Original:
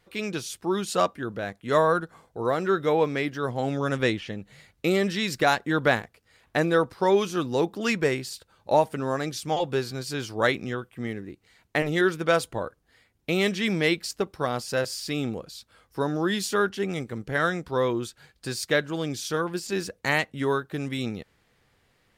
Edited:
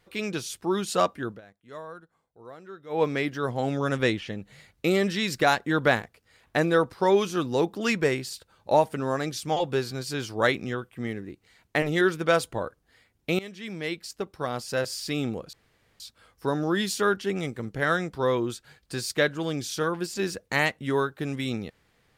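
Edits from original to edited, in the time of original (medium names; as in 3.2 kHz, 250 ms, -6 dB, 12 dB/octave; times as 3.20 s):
1.27–3.03 s: dip -19.5 dB, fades 0.14 s
13.39–15.03 s: fade in, from -19 dB
15.53 s: insert room tone 0.47 s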